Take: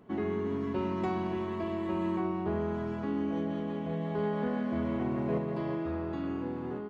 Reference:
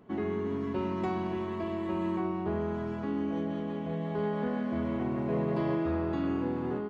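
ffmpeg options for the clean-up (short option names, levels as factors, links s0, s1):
-af "asetnsamples=n=441:p=0,asendcmd='5.38 volume volume 4dB',volume=1"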